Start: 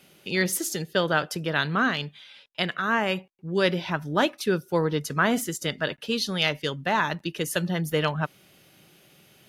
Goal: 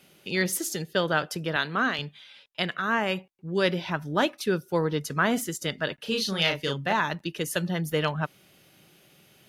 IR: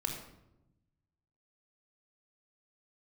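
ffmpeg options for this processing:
-filter_complex "[0:a]asettb=1/sr,asplit=3[s0][s1][s2];[s0]atrim=end=1.564[s3];[s1]atrim=start=1.56:end=1.99,asetpts=PTS-STARTPTS,afade=t=in:d=0.004:c=qsin,afade=t=out:st=0.426:d=0.004:c=qsin,highpass=220[s4];[s2]atrim=start=1.986[s5];[s3][s4]acrossfade=d=0.004:c1=hsin:c2=qsin[s6];[s6][s5]acrossfade=d=0.004:c1=qsin:c2=hsin,asettb=1/sr,asplit=3[s7][s8][s9];[s7]atrim=end=6.024[s10];[s8]atrim=start=6.02:end=6.93,asetpts=PTS-STARTPTS,afade=t=in:d=0.004:c=qsin,afade=t=out:st=0.906:d=0.004:c=qsin,asplit=2[s11][s12];[s12]adelay=36,volume=0.631[s13];[s11][s13]amix=inputs=2:normalize=0,atrim=end_sample=40131[s14];[s9]atrim=start=6.926[s15];[s10][s14]acrossfade=d=0.004:c1=hsin:c2=qsin[s16];[s16][s15]acrossfade=d=0.004:c1=qsin:c2=hsin,volume=0.841"

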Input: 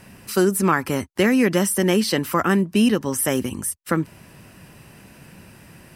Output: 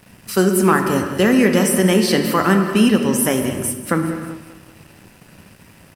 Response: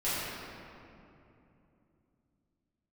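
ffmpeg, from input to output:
-filter_complex "[0:a]asettb=1/sr,asplit=3[s0][s1][s2];[s0]atrim=end=0.714[s3];[s1]atrim=start=0.71:end=1.35,asetpts=PTS-STARTPTS,afade=t=in:d=0.004:c=qsin,afade=t=out:st=0.636:d=0.004:c=qsin,bandreject=f=2200:w=5.5[s4];[s2]atrim=start=1.346[s5];[s3][s4]acrossfade=d=0.004:c1=hsin:c2=qsin[s6];[s6][s5]acrossfade=d=0.004:c1=qsin:c2=hsin,aecho=1:1:195|390|585|780|975:0.188|0.0961|0.049|0.025|0.0127,asplit=2[s7][s8];[1:a]atrim=start_sample=2205,afade=t=out:st=0.42:d=0.01,atrim=end_sample=18963[s9];[s8][s9]afir=irnorm=-1:irlink=0,volume=0.251[s10];[s7][s10]amix=inputs=2:normalize=0,aeval=exprs='sgn(val(0))*max(abs(val(0))-0.00422,0)':c=same,volume=1.19"

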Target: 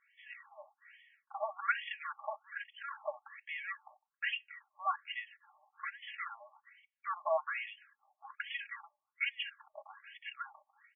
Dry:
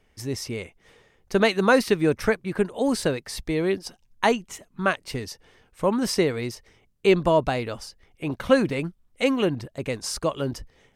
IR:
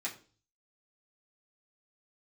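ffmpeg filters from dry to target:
-filter_complex "[0:a]asoftclip=type=tanh:threshold=0.0841,aecho=1:1:3.6:0.79,asplit=2[s0][s1];[1:a]atrim=start_sample=2205,highshelf=f=3500:g=-9[s2];[s1][s2]afir=irnorm=-1:irlink=0,volume=0.126[s3];[s0][s3]amix=inputs=2:normalize=0,afftfilt=real='re*between(b*sr/1024,820*pow(2500/820,0.5+0.5*sin(2*PI*1.2*pts/sr))/1.41,820*pow(2500/820,0.5+0.5*sin(2*PI*1.2*pts/sr))*1.41)':imag='im*between(b*sr/1024,820*pow(2500/820,0.5+0.5*sin(2*PI*1.2*pts/sr))/1.41,820*pow(2500/820,0.5+0.5*sin(2*PI*1.2*pts/sr))*1.41)':win_size=1024:overlap=0.75,volume=0.794"

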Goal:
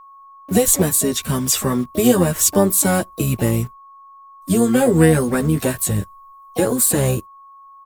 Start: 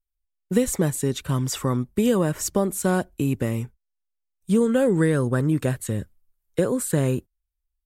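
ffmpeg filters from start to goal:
-filter_complex "[0:a]flanger=delay=8.9:depth=3.6:regen=-3:speed=0.3:shape=sinusoidal,asplit=3[s0][s1][s2];[s1]asetrate=22050,aresample=44100,atempo=2,volume=0.178[s3];[s2]asetrate=66075,aresample=44100,atempo=0.66742,volume=0.251[s4];[s0][s3][s4]amix=inputs=3:normalize=0,crystalizer=i=2:c=0,asplit=2[s5][s6];[s6]acrusher=bits=6:mix=0:aa=0.000001,volume=0.422[s7];[s5][s7]amix=inputs=2:normalize=0,aeval=exprs='val(0)+0.00562*sin(2*PI*1100*n/s)':c=same,volume=1.58"

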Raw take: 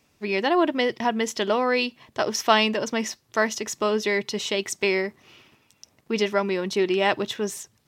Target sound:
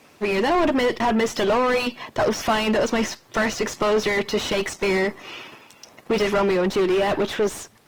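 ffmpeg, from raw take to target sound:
-filter_complex "[0:a]aemphasis=mode=production:type=cd,asplit=2[s0][s1];[s1]highpass=f=720:p=1,volume=56.2,asoftclip=type=tanh:threshold=0.668[s2];[s0][s2]amix=inputs=2:normalize=0,lowpass=f=1000:p=1,volume=0.501,volume=0.473" -ar 48000 -c:a libopus -b:a 20k

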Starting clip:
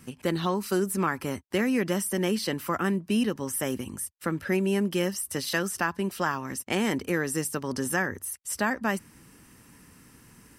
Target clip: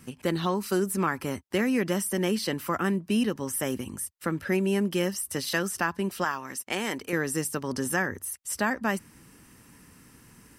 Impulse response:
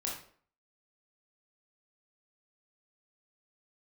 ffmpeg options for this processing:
-filter_complex "[0:a]asettb=1/sr,asplit=3[s0][s1][s2];[s0]atrim=end=6.244[s3];[s1]atrim=start=6.24:end=7.13,asetpts=PTS-STARTPTS,afade=t=in:d=0.004:c=qsin,afade=t=out:st=0.886:d=0.004:c=qsin,lowshelf=f=310:g=-12[s4];[s2]atrim=start=7.126[s5];[s3][s4]acrossfade=d=0.004:c1=hsin:c2=qsin[s6];[s6][s5]acrossfade=d=0.004:c1=qsin:c2=hsin"

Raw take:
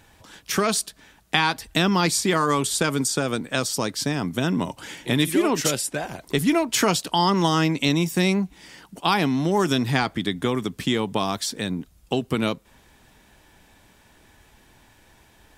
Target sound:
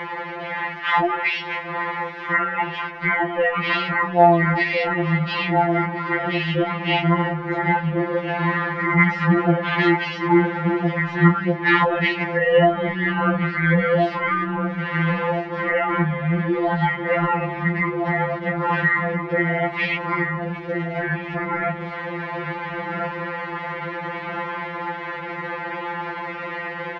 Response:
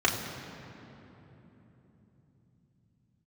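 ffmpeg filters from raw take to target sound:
-filter_complex "[0:a]aeval=exprs='val(0)+0.5*0.0398*sgn(val(0))':c=same,asplit=2[s0][s1];[s1]adelay=786,lowpass=f=1400:p=1,volume=0.562,asplit=2[s2][s3];[s3]adelay=786,lowpass=f=1400:p=1,volume=0.5,asplit=2[s4][s5];[s5]adelay=786,lowpass=f=1400:p=1,volume=0.5,asplit=2[s6][s7];[s7]adelay=786,lowpass=f=1400:p=1,volume=0.5,asplit=2[s8][s9];[s9]adelay=786,lowpass=f=1400:p=1,volume=0.5,asplit=2[s10][s11];[s11]adelay=786,lowpass=f=1400:p=1,volume=0.5[s12];[s0][s2][s4][s6][s8][s10][s12]amix=inputs=7:normalize=0,asplit=2[s13][s14];[1:a]atrim=start_sample=2205,atrim=end_sample=6174,lowpass=f=2400:w=0.5412,lowpass=f=2400:w=1.3066[s15];[s14][s15]afir=irnorm=-1:irlink=0,volume=0.0422[s16];[s13][s16]amix=inputs=2:normalize=0,asetrate=25442,aresample=44100,highpass=120,equalizer=f=180:t=q:w=4:g=-9,equalizer=f=260:t=q:w=4:g=-8,equalizer=f=880:t=q:w=4:g=5,equalizer=f=1900:t=q:w=4:g=6,lowpass=f=2400:w=0.5412,lowpass=f=2400:w=1.3066,alimiter=level_in=4.47:limit=0.891:release=50:level=0:latency=1,afftfilt=real='re*2.83*eq(mod(b,8),0)':imag='im*2.83*eq(mod(b,8),0)':win_size=2048:overlap=0.75,volume=0.562"

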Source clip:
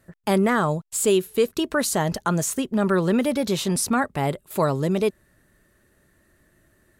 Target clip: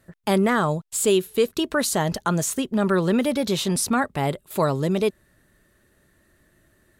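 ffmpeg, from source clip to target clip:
-af "equalizer=f=3600:t=o:w=0.65:g=3"

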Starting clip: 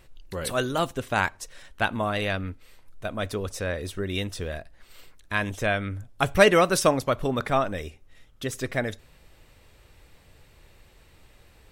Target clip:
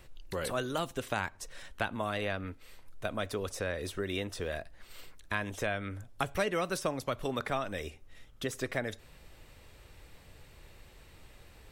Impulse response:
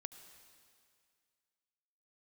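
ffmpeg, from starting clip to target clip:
-filter_complex "[0:a]acrossover=split=300|1900[s0][s1][s2];[s0]acompressor=threshold=0.00891:ratio=4[s3];[s1]acompressor=threshold=0.0224:ratio=4[s4];[s2]acompressor=threshold=0.00891:ratio=4[s5];[s3][s4][s5]amix=inputs=3:normalize=0"

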